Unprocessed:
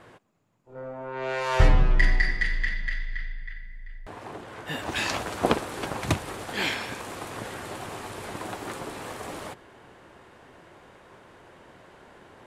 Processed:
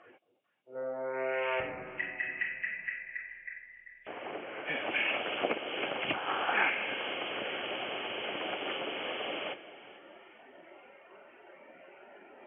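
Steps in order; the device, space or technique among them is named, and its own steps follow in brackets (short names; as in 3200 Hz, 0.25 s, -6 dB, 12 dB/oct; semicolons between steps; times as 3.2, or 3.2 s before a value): hearing aid with frequency lowering (nonlinear frequency compression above 2100 Hz 4:1; compressor 2.5:1, threshold -31 dBFS, peak gain reduction 12.5 dB; speaker cabinet 310–6900 Hz, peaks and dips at 570 Hz +4 dB, 1000 Hz -7 dB, 2700 Hz +4 dB); spectral noise reduction 11 dB; 6.13–6.7 band shelf 1100 Hz +11.5 dB 1.3 oct; echo with dull and thin repeats by turns 0.221 s, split 810 Hz, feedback 64%, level -14 dB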